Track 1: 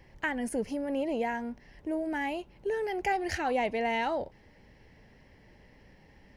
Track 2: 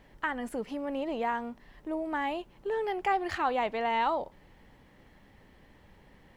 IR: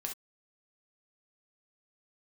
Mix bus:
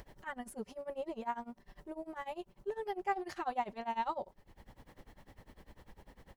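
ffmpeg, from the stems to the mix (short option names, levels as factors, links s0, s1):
-filter_complex "[0:a]volume=0.355[s0];[1:a]equalizer=f=220:w=0.52:g=-6,adelay=5.4,volume=0.891,asplit=2[s1][s2];[s2]apad=whole_len=280727[s3];[s0][s3]sidechaingate=range=0.0224:threshold=0.00141:ratio=16:detection=peak[s4];[s4][s1]amix=inputs=2:normalize=0,equalizer=f=2300:t=o:w=1.8:g=-8,acompressor=mode=upward:threshold=0.00794:ratio=2.5,tremolo=f=10:d=0.93"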